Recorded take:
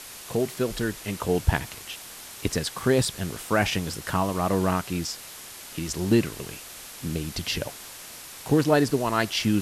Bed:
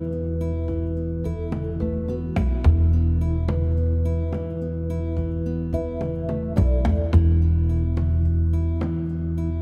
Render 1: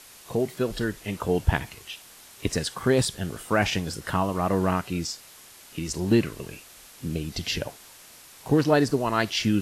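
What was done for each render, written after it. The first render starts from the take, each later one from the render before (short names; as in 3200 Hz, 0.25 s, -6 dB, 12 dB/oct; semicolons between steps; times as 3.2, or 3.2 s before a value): noise print and reduce 7 dB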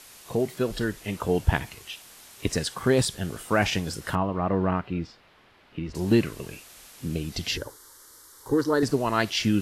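4.15–5.95 air absorption 380 m; 7.57–8.83 fixed phaser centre 690 Hz, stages 6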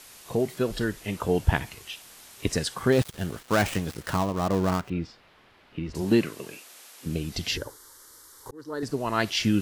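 2.92–4.9 switching dead time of 0.12 ms; 6.01–7.05 HPF 120 Hz -> 440 Hz; 8.51–9.29 fade in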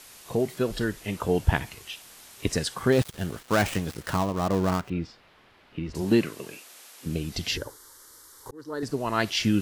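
nothing audible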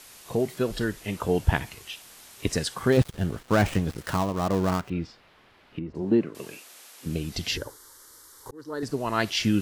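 2.97–3.98 tilt -1.5 dB/oct; 5.79–6.35 band-pass 330 Hz, Q 0.55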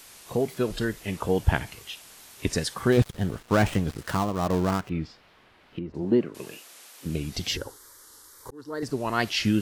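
wow and flutter 93 cents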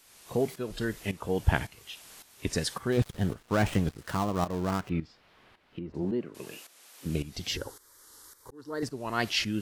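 tremolo saw up 1.8 Hz, depth 75%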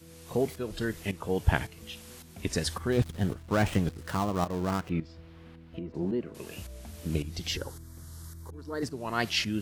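add bed -25 dB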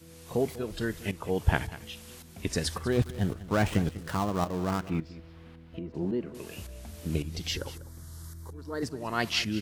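echo 0.196 s -16.5 dB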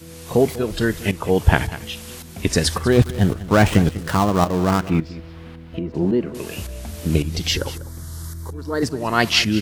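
gain +11.5 dB; limiter -1 dBFS, peak gain reduction 2.5 dB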